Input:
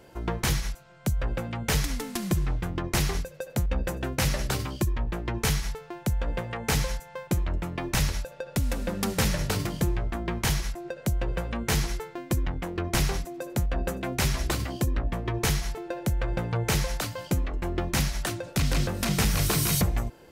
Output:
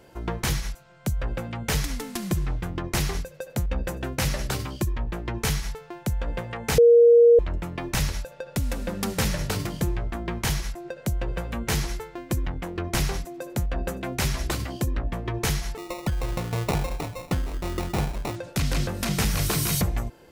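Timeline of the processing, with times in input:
0:06.78–0:07.39: beep over 471 Hz −10.5 dBFS
0:10.89–0:11.52: delay throw 460 ms, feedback 25%, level −15 dB
0:15.77–0:18.36: sample-rate reduction 1,600 Hz

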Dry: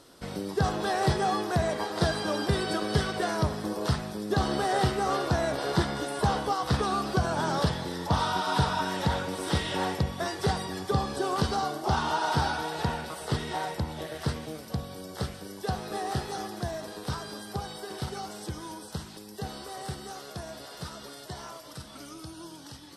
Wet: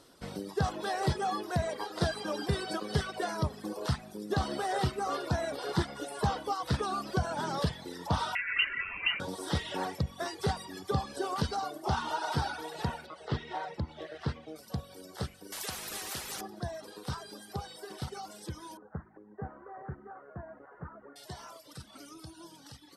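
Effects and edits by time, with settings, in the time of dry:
0:08.35–0:09.20: voice inversion scrambler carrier 2,900 Hz
0:13.06–0:14.56: low-pass filter 3,900 Hz
0:15.52–0:16.41: every bin compressed towards the loudest bin 4 to 1
0:18.77–0:21.16: Butterworth low-pass 1,800 Hz 48 dB per octave
whole clip: reverb reduction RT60 1.1 s; level −3.5 dB

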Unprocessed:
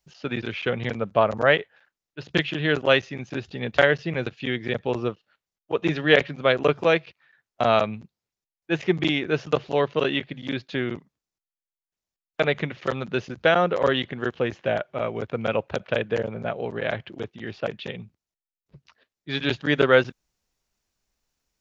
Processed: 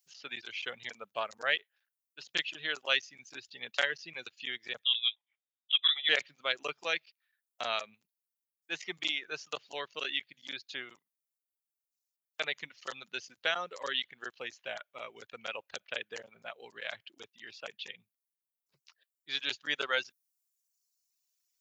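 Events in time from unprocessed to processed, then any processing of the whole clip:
0:04.84–0:06.09: voice inversion scrambler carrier 3,700 Hz
whole clip: reverb reduction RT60 1.1 s; first difference; level +3.5 dB

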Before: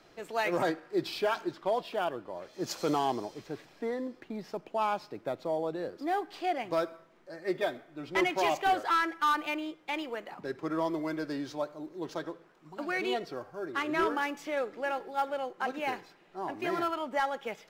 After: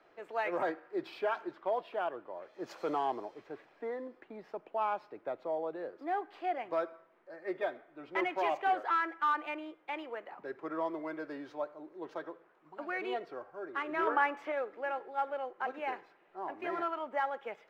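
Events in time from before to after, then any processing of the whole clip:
0:14.07–0:14.52: parametric band 1,100 Hz +7.5 dB 2.8 octaves
whole clip: three-way crossover with the lows and the highs turned down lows −14 dB, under 330 Hz, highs −18 dB, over 2,600 Hz; level −2.5 dB

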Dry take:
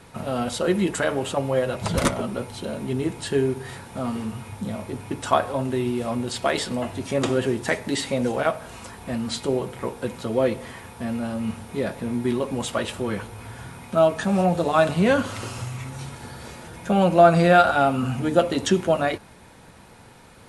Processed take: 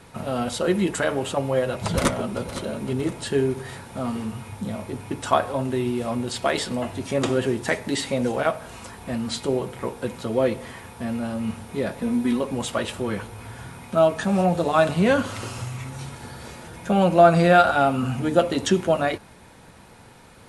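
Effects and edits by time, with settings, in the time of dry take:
0:01.45–0:02.42: delay throw 510 ms, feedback 45%, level −13 dB
0:12.01–0:12.41: comb filter 4 ms

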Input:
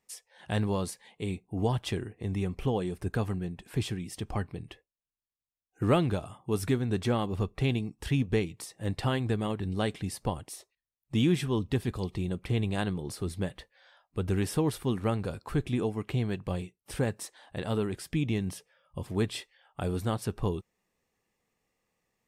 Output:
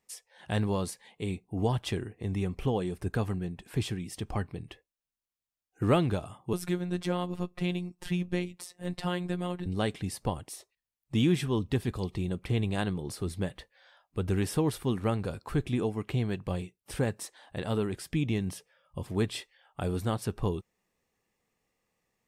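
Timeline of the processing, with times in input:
0:06.53–0:09.66: phases set to zero 178 Hz

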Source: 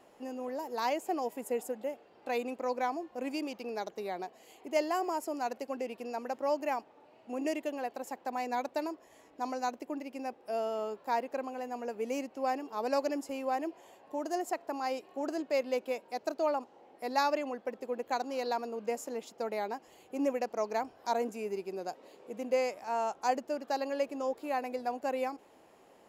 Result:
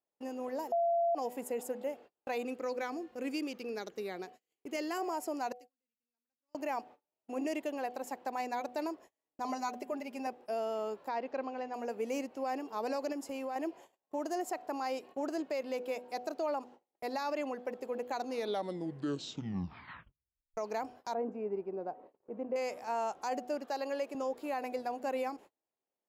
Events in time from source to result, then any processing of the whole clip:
0:00.72–0:01.15: beep over 682 Hz −7.5 dBFS
0:02.44–0:04.98: flat-topped bell 790 Hz −8 dB 1 octave
0:05.52–0:06.55: guitar amp tone stack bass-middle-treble 6-0-2
0:09.44–0:10.27: comb filter 4.9 ms, depth 76%
0:11.08–0:11.74: low-pass filter 5,300 Hz 24 dB per octave
0:13.12–0:13.56: downward compressor 5 to 1, threshold −35 dBFS
0:18.17: tape stop 2.40 s
0:21.14–0:22.56: low-pass filter 1,100 Hz
0:23.66–0:24.15: high-pass filter 290 Hz
whole clip: hum removal 247 Hz, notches 3; brickwall limiter −26.5 dBFS; noise gate −52 dBFS, range −35 dB

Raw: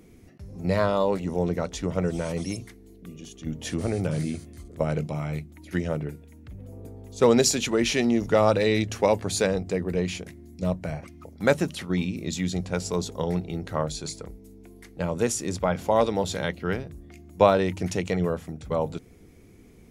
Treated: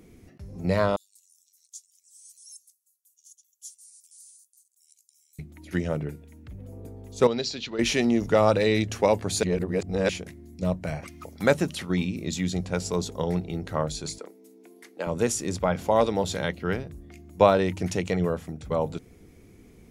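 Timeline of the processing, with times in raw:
0:00.96–0:05.39: inverse Chebyshev high-pass filter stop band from 1,200 Hz, stop band 80 dB
0:07.27–0:07.79: transistor ladder low-pass 4,900 Hz, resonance 55%
0:09.43–0:10.09: reverse
0:10.87–0:12.03: one half of a high-frequency compander encoder only
0:14.18–0:15.07: high-pass filter 270 Hz 24 dB per octave

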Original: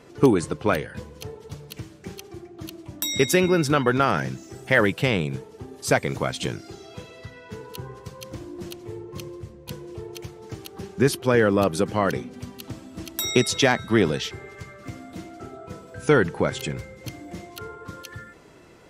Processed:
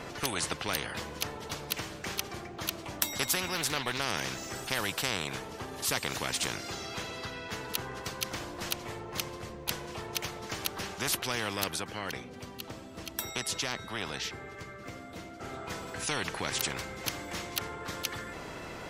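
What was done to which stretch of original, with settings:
0:03.55–0:04.06: highs frequency-modulated by the lows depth 0.14 ms
0:11.63–0:15.54: duck −11.5 dB, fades 0.15 s
whole clip: parametric band 9,100 Hz −4.5 dB 1.3 octaves; every bin compressed towards the loudest bin 4 to 1

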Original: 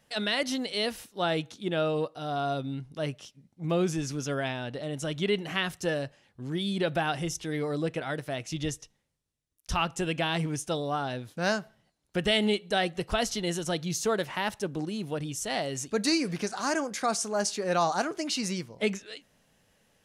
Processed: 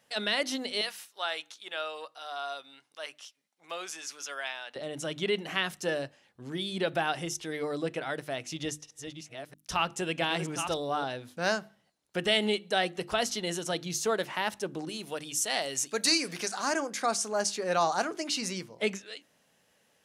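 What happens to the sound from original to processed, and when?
0:00.81–0:04.76: high-pass filter 990 Hz
0:08.19–0:11.04: delay that plays each chunk backwards 675 ms, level −7 dB
0:14.89–0:16.57: spectral tilt +2 dB per octave
whole clip: high-pass filter 270 Hz 6 dB per octave; mains-hum notches 50/100/150/200/250/300/350 Hz

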